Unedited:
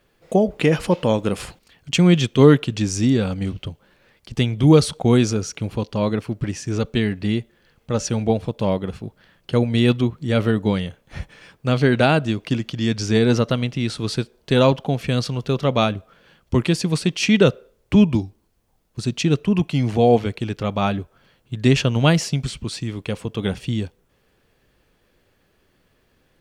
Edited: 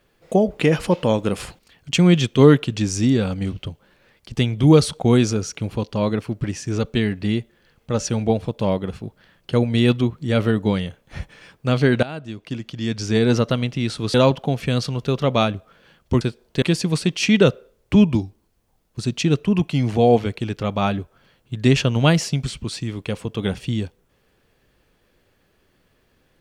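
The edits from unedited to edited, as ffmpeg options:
-filter_complex "[0:a]asplit=5[a][b][c][d][e];[a]atrim=end=12.03,asetpts=PTS-STARTPTS,afade=t=out:st=12.026:d=0.004:c=hsin:silence=0.112202[f];[b]atrim=start=12.03:end=14.142,asetpts=PTS-STARTPTS,afade=t=in:d=1.32:silence=0.112202[g];[c]atrim=start=14.548:end=16.622[h];[d]atrim=start=14.138:end=14.552[i];[e]atrim=start=16.618[j];[f][g]concat=n=2:v=0:a=1[k];[k][h]acrossfade=d=0.004:c1=hsin:c2=hsin[l];[l][i]acrossfade=d=0.004:c1=hsin:c2=hsin[m];[m][j]acrossfade=d=0.004:c1=hsin:c2=hsin"

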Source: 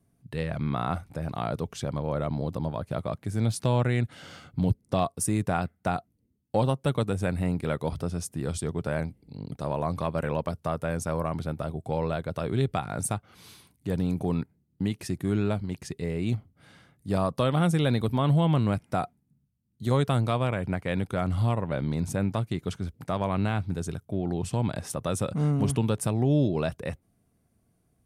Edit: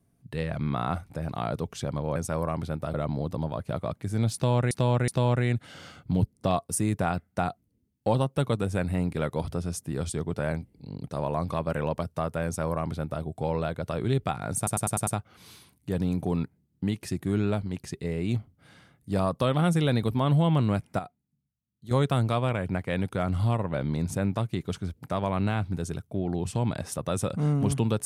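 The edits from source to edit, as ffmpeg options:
-filter_complex "[0:a]asplit=12[a][b][c][d][e][f][g][h][i][j][k][l];[a]atrim=end=2.162[m];[b]atrim=start=10.928:end=11.712[n];[c]atrim=start=2.158:end=3.932[o];[d]atrim=start=3.558:end=3.932[p];[e]atrim=start=3.558:end=13.152[q];[f]atrim=start=13.048:end=13.152[r];[g]atrim=start=13.048:end=13.152[s];[h]atrim=start=13.048:end=13.152[t];[i]atrim=start=13.048:end=13.152[u];[j]atrim=start=13.048:end=18.972[v];[k]atrim=start=18.968:end=19.892,asetpts=PTS-STARTPTS,volume=-10.5dB[w];[l]atrim=start=19.888[x];[m][n]acrossfade=d=0.004:c1=hsin:c2=hsin[y];[y][o]acrossfade=d=0.004:c1=hsin:c2=hsin[z];[z][p]acrossfade=d=0.004:c1=hsin:c2=hsin[aa];[aa][q]acrossfade=d=0.004:c1=hsin:c2=hsin[ab];[ab][r]acrossfade=d=0.004:c1=hsin:c2=hsin[ac];[ac][s]acrossfade=d=0.004:c1=hsin:c2=hsin[ad];[ad][t]acrossfade=d=0.004:c1=hsin:c2=hsin[ae];[ae][u]acrossfade=d=0.004:c1=hsin:c2=hsin[af];[af][v]acrossfade=d=0.004:c1=hsin:c2=hsin[ag];[ag][w]acrossfade=d=0.004:c1=hsin:c2=hsin[ah];[ah][x]acrossfade=d=0.004:c1=hsin:c2=hsin"

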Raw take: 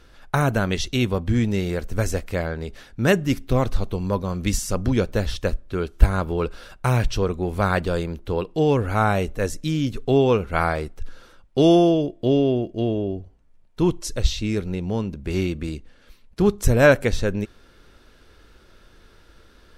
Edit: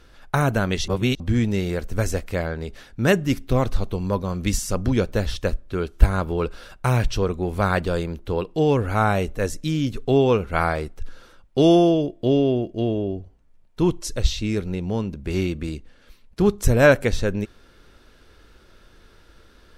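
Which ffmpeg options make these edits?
-filter_complex "[0:a]asplit=3[a][b][c];[a]atrim=end=0.882[d];[b]atrim=start=0.878:end=1.202,asetpts=PTS-STARTPTS,areverse[e];[c]atrim=start=1.198[f];[d][e]acrossfade=d=0.004:c1=hsin:c2=hsin[g];[g][f]acrossfade=d=0.004:c1=hsin:c2=hsin"

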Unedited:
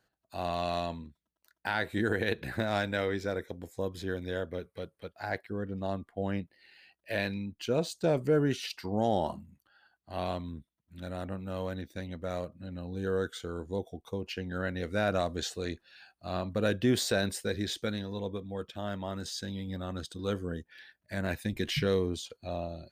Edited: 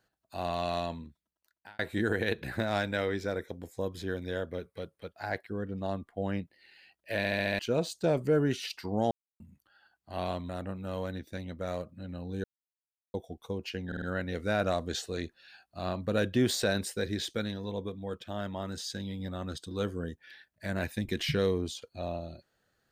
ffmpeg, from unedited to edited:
-filter_complex "[0:a]asplit=16[a][b][c][d][e][f][g][h][i][j][k][l][m][n][o][p];[a]atrim=end=1.79,asetpts=PTS-STARTPTS,afade=t=out:st=1.05:d=0.74[q];[b]atrim=start=1.79:end=7.242,asetpts=PTS-STARTPTS,afade=t=in:d=0.004:c=hsin[r];[c]atrim=start=7.168:end=7.242[s];[d]atrim=start=7.168:end=7.242[t];[e]atrim=start=7.168:end=7.242[u];[f]atrim=start=7.168:end=7.242[v];[g]atrim=start=7.168:end=7.242[w];[h]atrim=start=7.588:end=9.11,asetpts=PTS-STARTPTS,afade=t=out:st=1.518:d=0.004:c=hsin[x];[i]atrim=start=9.11:end=9.4,asetpts=PTS-STARTPTS,volume=0[y];[j]atrim=start=9.4:end=10.492,asetpts=PTS-STARTPTS,afade=t=in:d=0.004:c=hsin[z];[k]atrim=start=11.118:end=13.07,asetpts=PTS-STARTPTS,afade=t=out:st=1.948:d=0.004:c=hsin[aa];[l]atrim=start=13.07:end=13.77,asetpts=PTS-STARTPTS,volume=0[ab];[m]atrim=start=13.77:end=14.552,asetpts=PTS-STARTPTS,afade=t=in:d=0.004:c=hsin[ac];[n]atrim=start=14.498:end=14.552[ad];[o]atrim=start=14.498:end=14.552[ae];[p]atrim=start=14.498[af];[q][r]concat=n=2:v=0:a=1[ag];[ag][s]acrossfade=d=0.004:c1=hsin:c2=hsin[ah];[ah][t]acrossfade=d=0.004:c1=hsin:c2=hsin[ai];[ai][u]acrossfade=d=0.004:c1=hsin:c2=hsin[aj];[aj][v]acrossfade=d=0.004:c1=hsin:c2=hsin[ak];[ak][w]acrossfade=d=0.004:c1=hsin:c2=hsin[al];[x][y][z]concat=n=3:v=0:a=1[am];[al][am]acrossfade=d=0.004:c1=hsin:c2=hsin[an];[aa][ab][ac]concat=n=3:v=0:a=1[ao];[an][ao]acrossfade=d=0.004:c1=hsin:c2=hsin[ap];[ap][ad]acrossfade=d=0.004:c1=hsin:c2=hsin[aq];[aq][ae]acrossfade=d=0.004:c1=hsin:c2=hsin[ar];[ar][af]acrossfade=d=0.004:c1=hsin:c2=hsin"

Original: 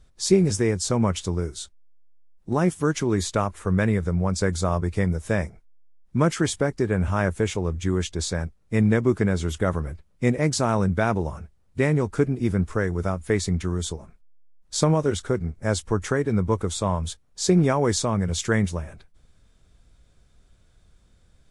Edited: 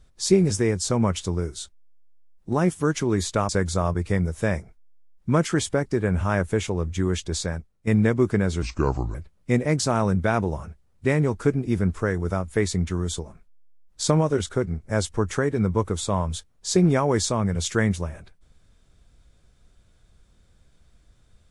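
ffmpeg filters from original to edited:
-filter_complex "[0:a]asplit=5[a][b][c][d][e];[a]atrim=end=3.492[f];[b]atrim=start=4.358:end=8.74,asetpts=PTS-STARTPTS,afade=t=out:st=3.922:d=0.46:silence=0.281838[g];[c]atrim=start=8.74:end=9.494,asetpts=PTS-STARTPTS,afade=t=in:d=0.004:c=hsin:silence=0.281838[h];[d]atrim=start=9.49:end=9.88,asetpts=PTS-STARTPTS,asetrate=32634,aresample=44100[i];[e]atrim=start=9.876[j];[g][h]concat=n=2:v=0:a=1[k];[f][k]acrossfade=d=0.004:c1=hsin:c2=hsin[l];[l][i]acrossfade=d=0.004:c1=hsin:c2=hsin[m];[m][j]acrossfade=d=0.004:c1=hsin:c2=hsin"

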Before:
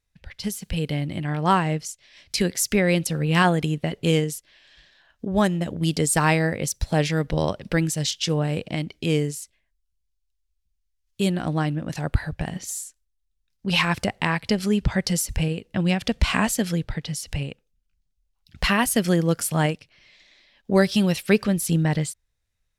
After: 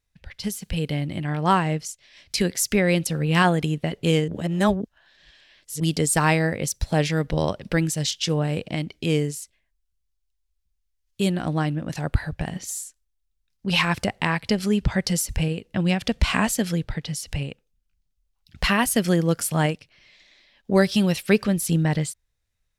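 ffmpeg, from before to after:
-filter_complex "[0:a]asplit=3[a][b][c];[a]atrim=end=4.282[d];[b]atrim=start=4.278:end=5.802,asetpts=PTS-STARTPTS,areverse[e];[c]atrim=start=5.798[f];[d][e]acrossfade=d=0.004:c1=hsin:c2=hsin[g];[g][f]acrossfade=d=0.004:c1=hsin:c2=hsin"

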